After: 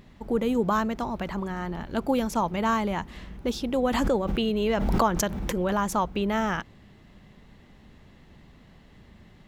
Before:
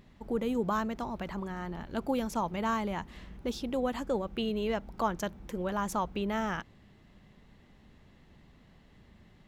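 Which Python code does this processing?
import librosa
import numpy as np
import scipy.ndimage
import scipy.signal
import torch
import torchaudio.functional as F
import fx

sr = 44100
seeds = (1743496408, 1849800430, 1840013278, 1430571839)

y = fx.pre_swell(x, sr, db_per_s=23.0, at=(3.9, 5.95))
y = F.gain(torch.from_numpy(y), 6.0).numpy()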